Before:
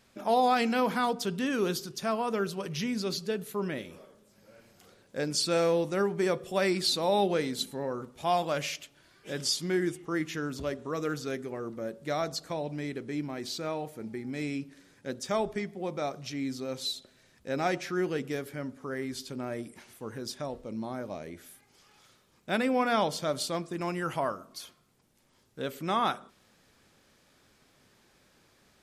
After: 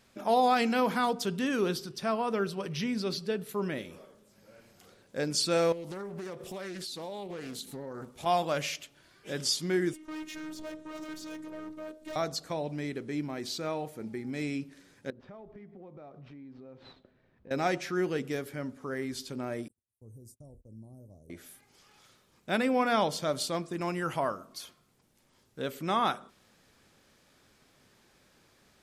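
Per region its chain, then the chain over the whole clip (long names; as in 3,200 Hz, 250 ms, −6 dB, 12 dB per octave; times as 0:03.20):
0:01.61–0:03.49: high-shelf EQ 9,600 Hz −8.5 dB + notch filter 6,700 Hz, Q 7.3
0:05.72–0:08.26: high-shelf EQ 8,300 Hz +7.5 dB + downward compressor 10 to 1, threshold −36 dBFS + highs frequency-modulated by the lows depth 0.34 ms
0:09.93–0:12.16: hard clipping −36.5 dBFS + phases set to zero 311 Hz
0:15.10–0:17.51: gap after every zero crossing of 0.077 ms + head-to-tape spacing loss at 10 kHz 44 dB + downward compressor, threshold −46 dBFS
0:19.68–0:21.30: Chebyshev band-stop filter 530–8,100 Hz + noise gate −50 dBFS, range −29 dB + drawn EQ curve 110 Hz 0 dB, 170 Hz −12 dB, 410 Hz −18 dB, 3,600 Hz −21 dB, 8,700 Hz −7 dB
whole clip: no processing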